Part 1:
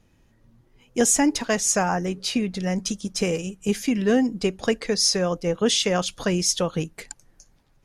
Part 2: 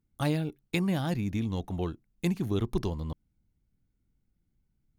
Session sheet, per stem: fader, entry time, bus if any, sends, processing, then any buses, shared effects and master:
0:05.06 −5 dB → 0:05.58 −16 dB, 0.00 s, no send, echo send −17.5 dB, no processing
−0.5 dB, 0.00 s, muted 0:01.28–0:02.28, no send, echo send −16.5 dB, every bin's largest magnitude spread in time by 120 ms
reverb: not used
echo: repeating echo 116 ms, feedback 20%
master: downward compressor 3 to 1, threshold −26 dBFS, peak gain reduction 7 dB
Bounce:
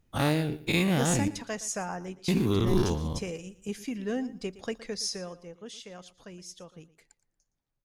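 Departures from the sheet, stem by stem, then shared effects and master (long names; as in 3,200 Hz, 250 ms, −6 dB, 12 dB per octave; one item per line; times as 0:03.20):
stem 1 −5.0 dB → −12.0 dB
master: missing downward compressor 3 to 1, threshold −26 dBFS, peak gain reduction 7 dB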